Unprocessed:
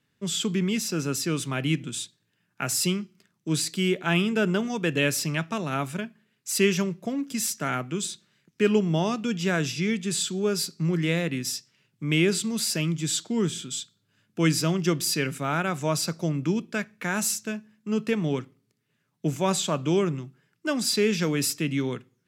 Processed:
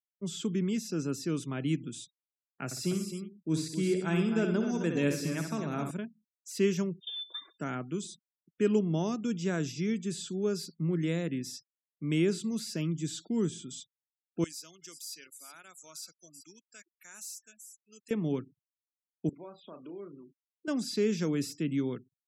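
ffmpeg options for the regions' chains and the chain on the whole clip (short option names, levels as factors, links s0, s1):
-filter_complex "[0:a]asettb=1/sr,asplit=3[s0][s1][s2];[s0]atrim=end=2.654[s3];[s1]atrim=start=2.65:end=5.91,asetpts=PTS-STARTPTS,afade=t=in:d=0.004:c=qsin,afade=t=out:st=3.256:d=0.004:c=qsin,bandreject=f=3000:w=9.5,aecho=1:1:63|117|198|262|359:0.473|0.211|0.112|0.376|0.106,atrim=end_sample=143766[s4];[s2]atrim=start=5.906[s5];[s3][s4]acrossfade=d=0.004:c1=hsin:c2=qsin[s6];[s6][s5]acrossfade=d=0.004:c1=qsin:c2=hsin,asettb=1/sr,asplit=3[s7][s8][s9];[s7]atrim=end=7.004[s10];[s8]atrim=start=7:end=7.59,asetpts=PTS-STARTPTS,afade=t=in:d=0.004:c=qsin,afade=t=out:st=0.586:d=0.004:c=qsin,aemphasis=mode=reproduction:type=50fm,lowpass=f=3200:t=q:w=0.5098,lowpass=f=3200:t=q:w=0.6013,lowpass=f=3200:t=q:w=0.9,lowpass=f=3200:t=q:w=2.563,afreqshift=-3800[s11];[s9]atrim=start=7.586[s12];[s10][s11]acrossfade=d=0.004:c1=hsin:c2=qsin[s13];[s13][s12]acrossfade=d=0.004:c1=qsin:c2=hsin,asettb=1/sr,asplit=3[s14][s15][s16];[s14]atrim=end=14.444[s17];[s15]atrim=start=14.44:end=18.11,asetpts=PTS-STARTPTS,afade=t=in:d=0.004:c=qsin,afade=t=out:st=3.666:d=0.004:c=qsin,aderivative,aecho=1:1:376:0.15,atrim=end_sample=161847[s18];[s16]atrim=start=18.106[s19];[s17][s18]acrossfade=d=0.004:c1=hsin:c2=qsin[s20];[s20][s19]acrossfade=d=0.004:c1=qsin:c2=hsin,asettb=1/sr,asplit=3[s21][s22][s23];[s21]atrim=end=19.294[s24];[s22]atrim=start=19.29:end=20.68,asetpts=PTS-STARTPTS,afade=t=in:d=0.004:c=qsin,afade=t=out:st=1.386:d=0.004:c=qsin,acompressor=threshold=0.0178:ratio=5:attack=3.2:release=140:knee=1:detection=peak,highpass=310,lowpass=2500,asplit=2[s25][s26];[s26]adelay=35,volume=0.447[s27];[s25][s27]amix=inputs=2:normalize=0,atrim=end_sample=61299[s28];[s23]atrim=start=20.676[s29];[s24][s28]acrossfade=d=0.004:c1=hsin:c2=qsin[s30];[s30][s29]acrossfade=d=0.004:c1=qsin:c2=hsin,afftfilt=real='re*gte(hypot(re,im),0.00631)':imag='im*gte(hypot(re,im),0.00631)':win_size=1024:overlap=0.75,firequalizer=gain_entry='entry(130,0);entry(280,4);entry(610,-2);entry(2700,-7);entry(6300,4)':delay=0.05:min_phase=1,acrossover=split=4600[s31][s32];[s32]acompressor=threshold=0.01:ratio=4:attack=1:release=60[s33];[s31][s33]amix=inputs=2:normalize=0,volume=0.473"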